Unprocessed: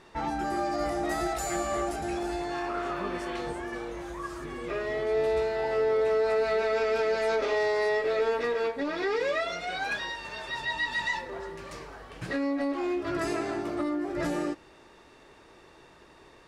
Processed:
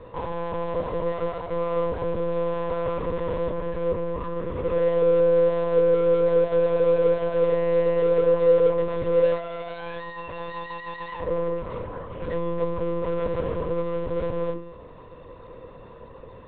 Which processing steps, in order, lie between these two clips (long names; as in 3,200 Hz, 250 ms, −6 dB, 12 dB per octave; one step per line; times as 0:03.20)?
in parallel at −4 dB: wrap-around overflow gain 32.5 dB
on the sum: hum removal 148.8 Hz, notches 35
gain into a clipping stage and back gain 35.5 dB
one-pitch LPC vocoder at 8 kHz 170 Hz
low-shelf EQ 480 Hz +11 dB
hollow resonant body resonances 500/1,000 Hz, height 17 dB, ringing for 40 ms
expander for the loud parts 1.5 to 1, over −29 dBFS
level +1.5 dB